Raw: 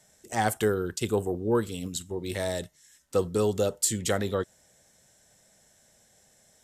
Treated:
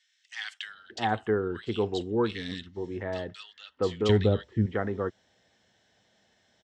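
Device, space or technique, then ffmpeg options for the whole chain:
guitar cabinet: -filter_complex "[0:a]asettb=1/sr,asplit=3[s0][s1][s2];[s0]atrim=end=3.434[s3];[s1]atrim=start=3.43:end=4,asetpts=PTS-STARTPTS,afade=t=in:d=0.004:c=qsin,afade=t=out:st=0.566:d=0.004:c=qsin,aemphasis=mode=reproduction:type=riaa[s4];[s2]atrim=start=3.996[s5];[s3][s4]acrossfade=d=0.004:c1=hsin:c2=qsin[s6];[s6][s5]acrossfade=d=0.004:c1=qsin:c2=hsin,highpass=88,equalizer=f=150:t=q:w=4:g=-10,equalizer=f=570:t=q:w=4:g=-6,equalizer=f=1800:t=q:w=4:g=4,equalizer=f=3100:t=q:w=4:g=5,lowpass=f=4600:w=0.5412,lowpass=f=4600:w=1.3066,acrossover=split=1800[s7][s8];[s7]adelay=660[s9];[s9][s8]amix=inputs=2:normalize=0"

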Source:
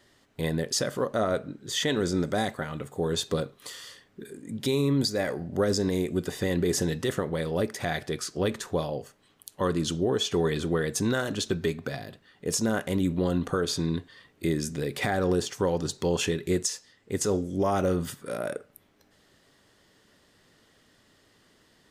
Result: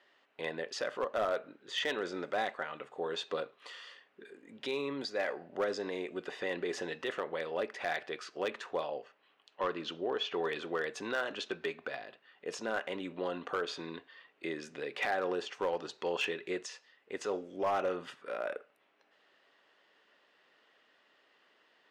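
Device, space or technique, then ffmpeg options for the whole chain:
megaphone: -filter_complex "[0:a]highpass=560,lowpass=2800,equalizer=f=2700:t=o:w=0.27:g=6,asoftclip=type=hard:threshold=0.0708,asettb=1/sr,asplit=3[s0][s1][s2];[s0]atrim=end=8.994[s3];[s1]atrim=start=8.99:end=10.43,asetpts=PTS-STARTPTS,afade=t=in:d=0.004:c=qsin,afade=t=out:st=1.436:d=0.004:c=qsin,lowpass=5100[s4];[s2]atrim=start=10.426[s5];[s3][s4]acrossfade=d=0.004:c1=hsin:c2=qsin[s6];[s6][s5]acrossfade=d=0.004:c1=qsin:c2=hsin,volume=0.794"

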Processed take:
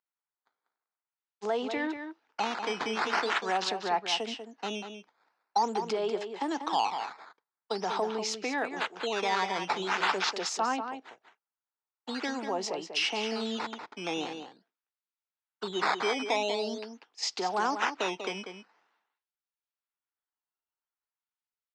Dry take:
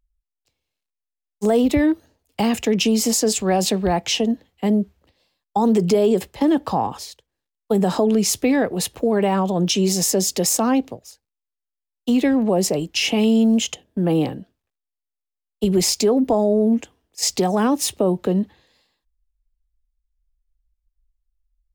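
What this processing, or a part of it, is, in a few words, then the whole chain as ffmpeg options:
circuit-bent sampling toy: -filter_complex "[0:a]acrusher=samples=9:mix=1:aa=0.000001:lfo=1:lforange=14.4:lforate=0.45,highpass=550,equalizer=f=560:t=q:w=4:g=-8,equalizer=f=900:t=q:w=4:g=5,equalizer=f=1400:t=q:w=4:g=5,lowpass=f=5500:w=0.5412,lowpass=f=5500:w=1.3066,asplit=2[s0][s1];[s1]adelay=192.4,volume=0.398,highshelf=f=4000:g=-4.33[s2];[s0][s2]amix=inputs=2:normalize=0,volume=0.473"

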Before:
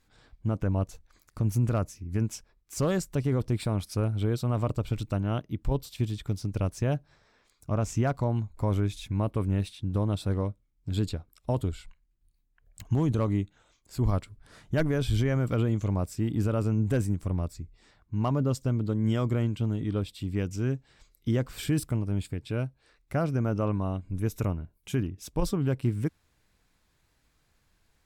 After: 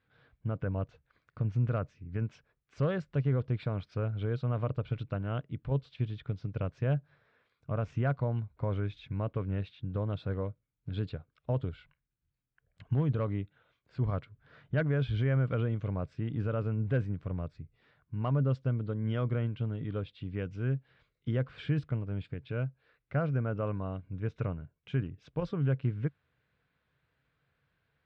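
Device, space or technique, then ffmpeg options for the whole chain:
guitar cabinet: -af "highpass=82,equalizer=f=140:t=q:w=4:g=7,equalizer=f=210:t=q:w=4:g=-4,equalizer=f=330:t=q:w=4:g=-5,equalizer=f=490:t=q:w=4:g=4,equalizer=f=860:t=q:w=4:g=-4,equalizer=f=1500:t=q:w=4:g=5,lowpass=f=3400:w=0.5412,lowpass=f=3400:w=1.3066,volume=0.562"

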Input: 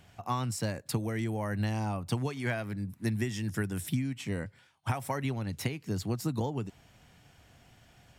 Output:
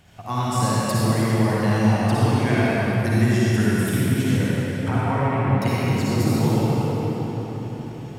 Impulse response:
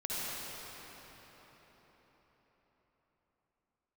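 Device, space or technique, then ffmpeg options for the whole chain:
cathedral: -filter_complex "[0:a]asettb=1/sr,asplit=3[s0][s1][s2];[s0]atrim=end=4.884[s3];[s1]atrim=start=4.88:end=5.62,asetpts=PTS-STARTPTS,afade=t=in:d=0.004:c=qsin,afade=t=out:st=0.736:d=0.004:c=qsin,lowpass=f=2300:w=0.5412,lowpass=f=2300:w=1.3066[s4];[s2]atrim=start=5.616[s5];[s3][s4]acrossfade=d=0.004:c1=hsin:c2=qsin[s6];[s6][s5]acrossfade=d=0.004:c1=qsin:c2=hsin[s7];[1:a]atrim=start_sample=2205[s8];[s7][s8]afir=irnorm=-1:irlink=0,volume=2.24"

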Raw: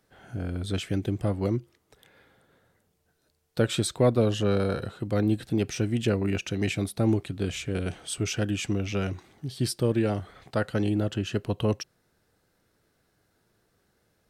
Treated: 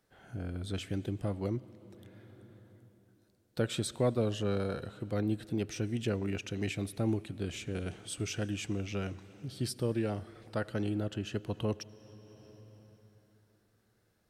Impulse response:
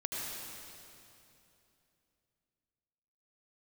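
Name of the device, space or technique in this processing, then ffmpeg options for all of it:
compressed reverb return: -filter_complex "[0:a]asplit=2[s0][s1];[1:a]atrim=start_sample=2205[s2];[s1][s2]afir=irnorm=-1:irlink=0,acompressor=threshold=0.02:ratio=10,volume=0.422[s3];[s0][s3]amix=inputs=2:normalize=0,volume=0.398"

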